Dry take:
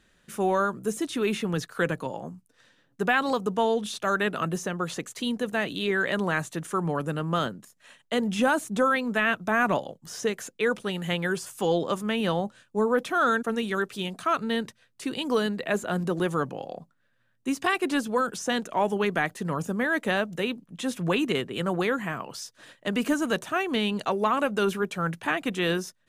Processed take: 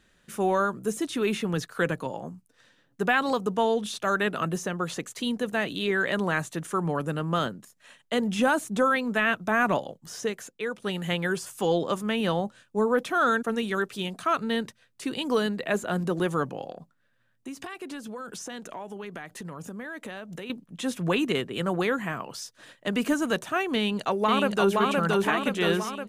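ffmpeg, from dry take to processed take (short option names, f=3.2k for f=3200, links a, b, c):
-filter_complex "[0:a]asettb=1/sr,asplit=3[a][b][c];[a]atrim=end=16.714[d];[b]atrim=start=16.71:end=20.5,asetpts=PTS-STARTPTS,afade=t=in:d=0.004:c=qsin,afade=t=out:st=3.786:d=0.004:c=qsin,acompressor=threshold=-35dB:ratio=6:attack=3.2:release=140:knee=1:detection=peak[e];[c]atrim=start=20.496[f];[d][e]acrossfade=d=0.004:c1=hsin:c2=qsin[g];[g][f]acrossfade=d=0.004:c1=qsin:c2=hsin,asplit=2[h][i];[i]afade=t=in:st=23.76:d=0.01,afade=t=out:st=24.78:d=0.01,aecho=0:1:520|1040|1560|2080|2600|3120|3640|4160|4680:0.841395|0.504837|0.302902|0.181741|0.109045|0.0654269|0.0392561|0.0235537|0.0141322[j];[h][j]amix=inputs=2:normalize=0,asplit=2[k][l];[k]atrim=end=10.82,asetpts=PTS-STARTPTS,afade=t=out:st=9.98:d=0.84:silence=0.354813[m];[l]atrim=start=10.82,asetpts=PTS-STARTPTS,afade=t=in:d=0.004:c=hsin:silence=0.354813[n];[m][n]concat=n=2:v=0:a=1"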